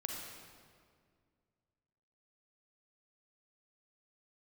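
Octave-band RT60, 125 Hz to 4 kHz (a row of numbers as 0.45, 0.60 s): 2.7, 2.5, 2.2, 1.9, 1.6, 1.4 s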